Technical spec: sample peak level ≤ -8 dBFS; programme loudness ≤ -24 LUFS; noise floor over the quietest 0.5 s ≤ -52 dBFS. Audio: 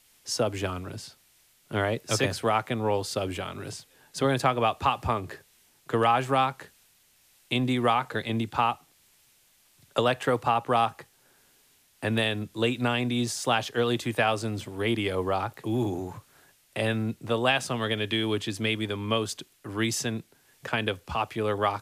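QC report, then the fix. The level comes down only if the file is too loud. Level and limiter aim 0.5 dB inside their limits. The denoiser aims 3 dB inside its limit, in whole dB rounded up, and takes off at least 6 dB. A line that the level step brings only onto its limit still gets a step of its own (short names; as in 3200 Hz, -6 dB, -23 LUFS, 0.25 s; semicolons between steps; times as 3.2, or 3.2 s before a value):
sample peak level -10.0 dBFS: OK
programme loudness -27.5 LUFS: OK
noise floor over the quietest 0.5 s -63 dBFS: OK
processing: none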